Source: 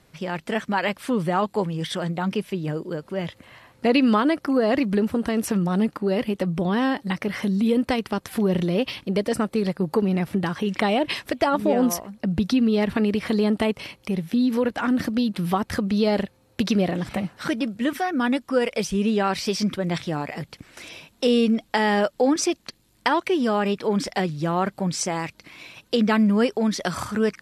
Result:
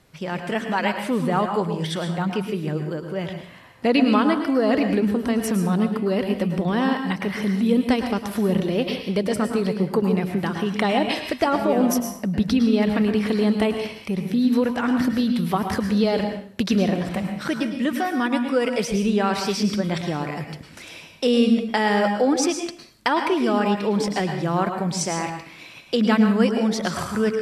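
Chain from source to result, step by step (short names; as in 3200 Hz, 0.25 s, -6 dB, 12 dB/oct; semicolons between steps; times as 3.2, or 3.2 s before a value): plate-style reverb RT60 0.52 s, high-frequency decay 0.9×, pre-delay 95 ms, DRR 5.5 dB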